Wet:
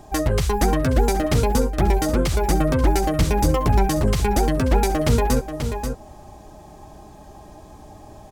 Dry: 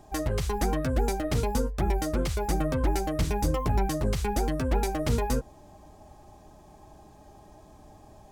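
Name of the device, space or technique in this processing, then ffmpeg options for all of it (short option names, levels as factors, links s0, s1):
ducked delay: -filter_complex "[0:a]asplit=3[s0][s1][s2];[s1]adelay=535,volume=0.422[s3];[s2]apad=whole_len=390314[s4];[s3][s4]sidechaincompress=threshold=0.0251:ratio=8:attack=41:release=210[s5];[s0][s5]amix=inputs=2:normalize=0,volume=2.51"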